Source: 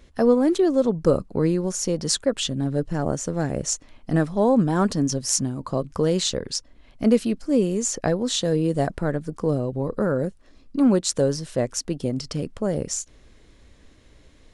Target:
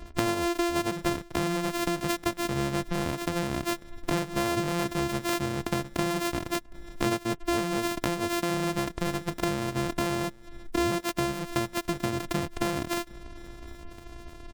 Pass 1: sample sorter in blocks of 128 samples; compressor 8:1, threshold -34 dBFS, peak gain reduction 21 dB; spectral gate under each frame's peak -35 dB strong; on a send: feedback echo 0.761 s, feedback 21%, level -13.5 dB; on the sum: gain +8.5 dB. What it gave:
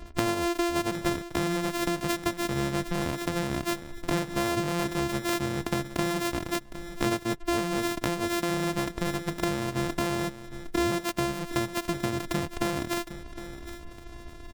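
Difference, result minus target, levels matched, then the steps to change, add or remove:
echo-to-direct +12 dB
change: feedback echo 0.761 s, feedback 21%, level -25.5 dB

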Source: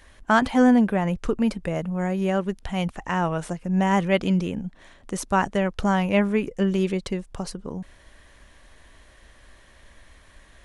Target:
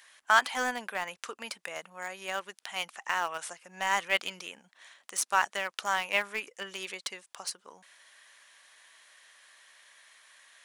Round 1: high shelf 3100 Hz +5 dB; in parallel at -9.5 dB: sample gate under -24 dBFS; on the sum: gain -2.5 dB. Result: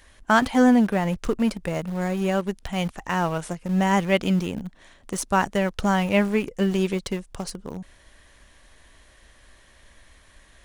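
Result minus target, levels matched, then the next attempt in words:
1000 Hz band -3.0 dB
HPF 1100 Hz 12 dB/oct; high shelf 3100 Hz +5 dB; in parallel at -9.5 dB: sample gate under -24 dBFS; on the sum: gain -2.5 dB

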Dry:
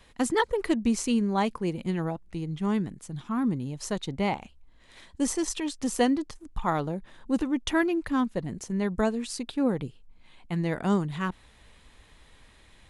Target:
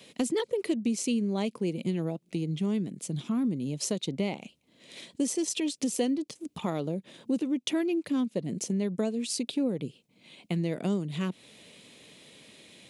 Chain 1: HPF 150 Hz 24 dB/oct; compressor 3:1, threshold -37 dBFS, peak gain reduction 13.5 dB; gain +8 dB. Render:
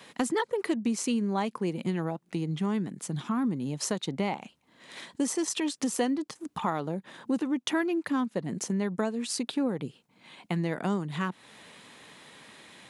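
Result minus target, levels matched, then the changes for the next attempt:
1000 Hz band +8.0 dB
add after HPF: band shelf 1200 Hz -11.5 dB 1.5 oct

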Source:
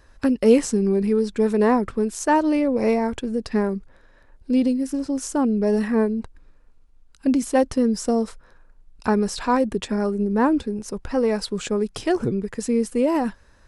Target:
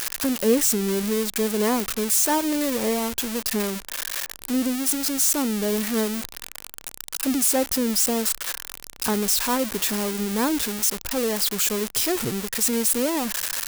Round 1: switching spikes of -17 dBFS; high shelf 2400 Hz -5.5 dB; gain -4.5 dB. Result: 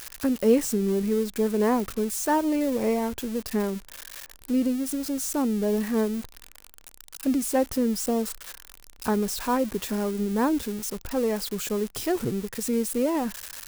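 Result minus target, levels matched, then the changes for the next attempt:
switching spikes: distortion -12 dB
change: switching spikes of -5 dBFS

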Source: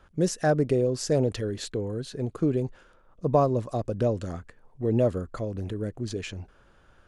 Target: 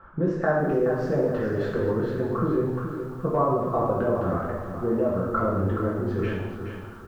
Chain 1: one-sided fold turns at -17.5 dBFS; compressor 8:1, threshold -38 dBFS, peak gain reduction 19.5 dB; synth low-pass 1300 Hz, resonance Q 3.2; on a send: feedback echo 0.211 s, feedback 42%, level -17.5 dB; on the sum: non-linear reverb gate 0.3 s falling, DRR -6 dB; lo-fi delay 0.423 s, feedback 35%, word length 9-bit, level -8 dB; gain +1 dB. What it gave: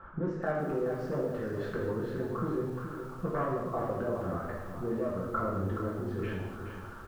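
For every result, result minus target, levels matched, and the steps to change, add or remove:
one-sided fold: distortion +24 dB; compressor: peak gain reduction +7.5 dB
change: one-sided fold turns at -11 dBFS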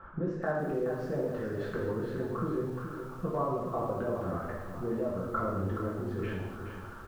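compressor: peak gain reduction +9 dB
change: compressor 8:1, threshold -28 dBFS, peak gain reduction 12 dB

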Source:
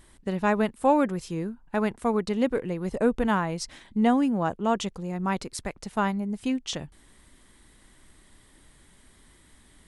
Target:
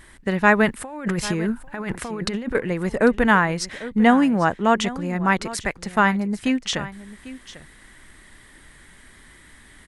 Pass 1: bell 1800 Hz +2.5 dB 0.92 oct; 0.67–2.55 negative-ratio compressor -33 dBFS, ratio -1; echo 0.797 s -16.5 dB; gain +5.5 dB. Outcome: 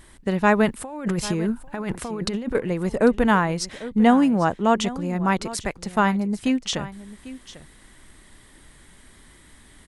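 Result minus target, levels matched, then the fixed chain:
2000 Hz band -4.5 dB
bell 1800 Hz +9.5 dB 0.92 oct; 0.67–2.55 negative-ratio compressor -33 dBFS, ratio -1; echo 0.797 s -16.5 dB; gain +5.5 dB

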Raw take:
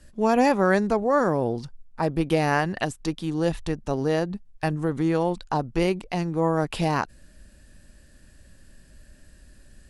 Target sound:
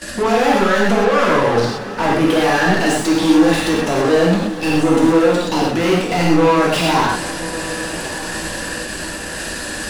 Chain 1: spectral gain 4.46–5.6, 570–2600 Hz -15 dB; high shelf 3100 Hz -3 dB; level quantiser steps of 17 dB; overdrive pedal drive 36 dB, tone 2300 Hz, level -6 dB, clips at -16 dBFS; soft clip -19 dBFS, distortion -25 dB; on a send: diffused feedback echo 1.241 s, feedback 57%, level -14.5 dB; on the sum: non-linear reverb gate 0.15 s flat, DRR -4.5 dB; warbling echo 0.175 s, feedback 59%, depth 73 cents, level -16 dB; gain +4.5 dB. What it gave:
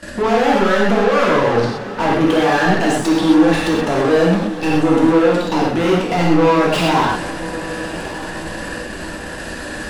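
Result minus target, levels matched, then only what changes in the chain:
8000 Hz band -7.0 dB
change: high shelf 3100 Hz +8.5 dB

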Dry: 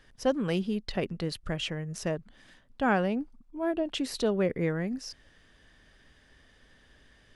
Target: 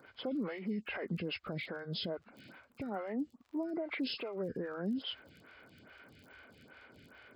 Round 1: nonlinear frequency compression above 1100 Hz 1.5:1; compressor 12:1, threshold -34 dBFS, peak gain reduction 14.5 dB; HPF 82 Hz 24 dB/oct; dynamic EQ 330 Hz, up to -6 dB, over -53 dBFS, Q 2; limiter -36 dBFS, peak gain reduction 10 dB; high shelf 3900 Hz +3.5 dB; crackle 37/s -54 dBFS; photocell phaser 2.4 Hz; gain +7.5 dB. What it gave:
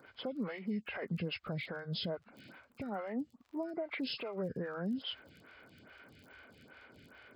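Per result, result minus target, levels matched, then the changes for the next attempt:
compressor: peak gain reduction +14.5 dB; 125 Hz band +2.5 dB
remove: compressor 12:1, threshold -34 dBFS, peak gain reduction 14.5 dB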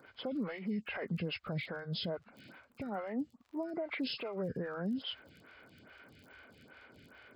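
125 Hz band +2.5 dB
change: dynamic EQ 130 Hz, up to -6 dB, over -53 dBFS, Q 2

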